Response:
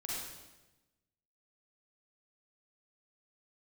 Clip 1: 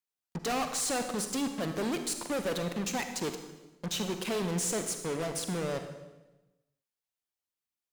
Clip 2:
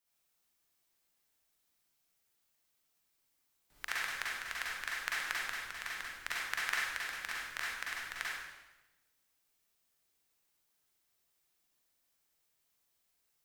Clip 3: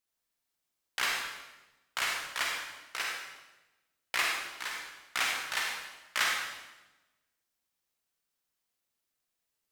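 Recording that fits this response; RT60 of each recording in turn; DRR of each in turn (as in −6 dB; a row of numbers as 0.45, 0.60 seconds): 2; 1.1, 1.1, 1.1 seconds; 6.5, −6.0, −1.0 decibels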